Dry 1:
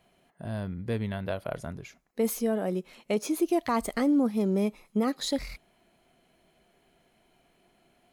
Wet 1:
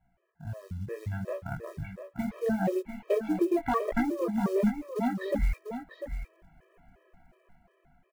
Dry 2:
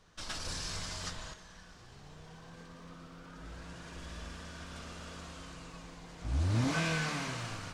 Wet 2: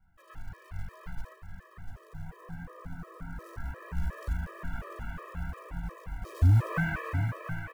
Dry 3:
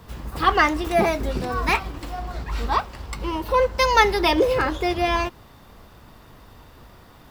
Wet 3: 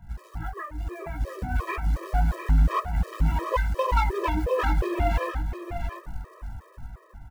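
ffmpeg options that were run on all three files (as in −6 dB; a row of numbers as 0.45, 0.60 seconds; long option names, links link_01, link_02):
-filter_complex "[0:a]flanger=delay=15.5:depth=5.3:speed=0.71,acompressor=threshold=-29dB:ratio=5,lowpass=frequency=1800:width=0.5412,lowpass=frequency=1800:width=1.3066,dynaudnorm=framelen=670:gausssize=5:maxgain=13dB,aemphasis=mode=reproduction:type=bsi,crystalizer=i=8:c=0,equalizer=frequency=270:width=2.5:gain=-6,volume=10.5dB,asoftclip=hard,volume=-10.5dB,bandreject=frequency=60:width_type=h:width=6,bandreject=frequency=120:width_type=h:width=6,acrusher=bits=7:mode=log:mix=0:aa=0.000001,asplit=2[link_01][link_02];[link_02]aecho=0:1:697:0.355[link_03];[link_01][link_03]amix=inputs=2:normalize=0,afftfilt=real='re*gt(sin(2*PI*2.8*pts/sr)*(1-2*mod(floor(b*sr/1024/330),2)),0)':imag='im*gt(sin(2*PI*2.8*pts/sr)*(1-2*mod(floor(b*sr/1024/330),2)),0)':win_size=1024:overlap=0.75,volume=-6dB"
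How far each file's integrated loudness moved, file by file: −2.0, +5.0, −6.0 LU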